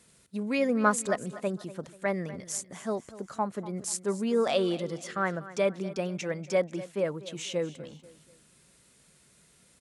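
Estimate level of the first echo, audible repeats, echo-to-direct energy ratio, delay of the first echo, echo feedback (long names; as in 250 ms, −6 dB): −16.5 dB, 3, −16.0 dB, 243 ms, 38%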